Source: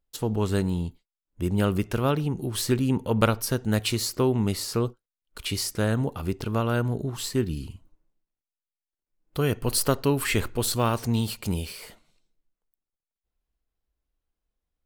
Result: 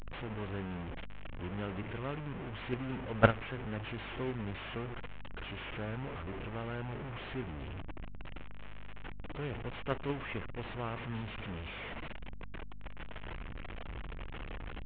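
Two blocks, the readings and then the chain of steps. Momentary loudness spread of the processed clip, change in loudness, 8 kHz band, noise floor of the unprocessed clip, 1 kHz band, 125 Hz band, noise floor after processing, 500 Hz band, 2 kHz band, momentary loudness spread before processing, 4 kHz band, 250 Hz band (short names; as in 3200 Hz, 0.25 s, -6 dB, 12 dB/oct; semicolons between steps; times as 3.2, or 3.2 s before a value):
11 LU, -13.5 dB, under -40 dB, under -85 dBFS, -8.0 dB, -12.5 dB, -44 dBFS, -11.0 dB, -5.5 dB, 8 LU, -15.0 dB, -13.5 dB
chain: delta modulation 16 kbps, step -20.5 dBFS; hum 50 Hz, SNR 11 dB; gate -16 dBFS, range -20 dB; gain +4.5 dB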